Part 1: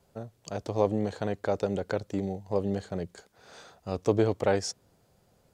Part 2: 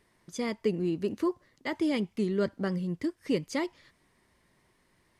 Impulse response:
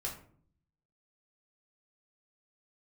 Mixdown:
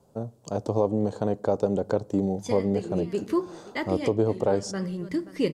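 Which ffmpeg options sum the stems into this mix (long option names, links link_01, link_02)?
-filter_complex "[0:a]equalizer=frequency=125:width_type=o:width=1:gain=7,equalizer=frequency=250:width_type=o:width=1:gain=9,equalizer=frequency=500:width_type=o:width=1:gain=6,equalizer=frequency=1000:width_type=o:width=1:gain=8,equalizer=frequency=2000:width_type=o:width=1:gain=-8,equalizer=frequency=8000:width_type=o:width=1:gain=5,volume=-3dB,asplit=3[link_01][link_02][link_03];[link_02]volume=-19.5dB[link_04];[1:a]adelay=2100,volume=1.5dB,asplit=3[link_05][link_06][link_07];[link_06]volume=-9.5dB[link_08];[link_07]volume=-19.5dB[link_09];[link_03]apad=whole_len=321705[link_10];[link_05][link_10]sidechaincompress=threshold=-34dB:ratio=8:attack=44:release=221[link_11];[2:a]atrim=start_sample=2205[link_12];[link_04][link_08]amix=inputs=2:normalize=0[link_13];[link_13][link_12]afir=irnorm=-1:irlink=0[link_14];[link_09]aecho=0:1:530:1[link_15];[link_01][link_11][link_14][link_15]amix=inputs=4:normalize=0,alimiter=limit=-12dB:level=0:latency=1:release=440"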